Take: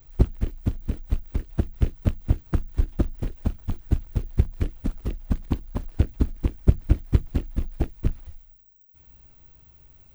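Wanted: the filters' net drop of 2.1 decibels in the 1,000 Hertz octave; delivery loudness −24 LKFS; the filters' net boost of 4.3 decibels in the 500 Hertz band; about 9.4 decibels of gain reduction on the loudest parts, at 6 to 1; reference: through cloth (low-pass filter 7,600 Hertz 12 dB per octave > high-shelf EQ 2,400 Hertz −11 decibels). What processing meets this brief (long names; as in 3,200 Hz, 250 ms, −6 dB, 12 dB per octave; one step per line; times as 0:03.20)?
parametric band 500 Hz +7.5 dB
parametric band 1,000 Hz −4.5 dB
downward compressor 6 to 1, threshold −21 dBFS
low-pass filter 7,600 Hz 12 dB per octave
high-shelf EQ 2,400 Hz −11 dB
level +8.5 dB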